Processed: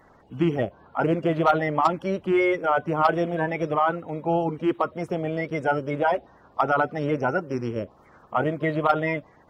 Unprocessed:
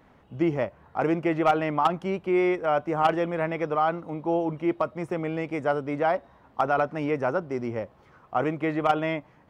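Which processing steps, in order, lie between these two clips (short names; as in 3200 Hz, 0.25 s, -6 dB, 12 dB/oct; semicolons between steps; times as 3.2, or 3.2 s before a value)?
bin magnitudes rounded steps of 30 dB; gain +2.5 dB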